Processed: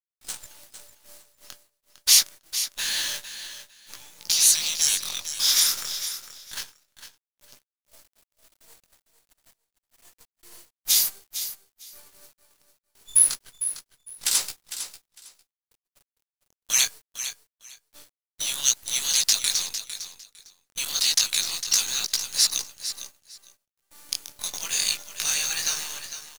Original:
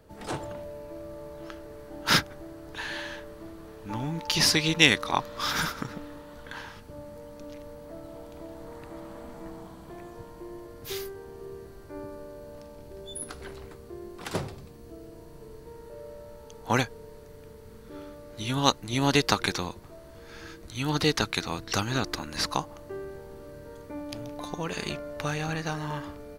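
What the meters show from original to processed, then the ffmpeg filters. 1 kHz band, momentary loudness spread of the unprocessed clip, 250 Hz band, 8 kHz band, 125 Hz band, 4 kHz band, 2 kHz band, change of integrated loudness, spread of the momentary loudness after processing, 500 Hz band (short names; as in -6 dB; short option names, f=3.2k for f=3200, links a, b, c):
-12.5 dB, 21 LU, under -20 dB, +16.0 dB, under -20 dB, +6.0 dB, -4.0 dB, +5.5 dB, 19 LU, under -15 dB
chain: -af "flanger=delay=15.5:depth=7.6:speed=0.27,agate=range=-32dB:threshold=-42dB:ratio=16:detection=peak,afftfilt=real='re*lt(hypot(re,im),0.1)':imag='im*lt(hypot(re,im),0.1)':win_size=1024:overlap=0.75,highpass=f=67:w=0.5412,highpass=f=67:w=1.3066,equalizer=f=7k:w=0.38:g=13.5,dynaudnorm=f=130:g=9:m=14dB,aderivative,acrusher=bits=6:dc=4:mix=0:aa=0.000001,aecho=1:1:454|908:0.282|0.0507"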